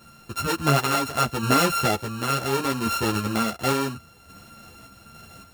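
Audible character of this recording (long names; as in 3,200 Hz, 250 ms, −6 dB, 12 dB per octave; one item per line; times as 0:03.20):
a buzz of ramps at a fixed pitch in blocks of 32 samples
sample-and-hold tremolo
a shimmering, thickened sound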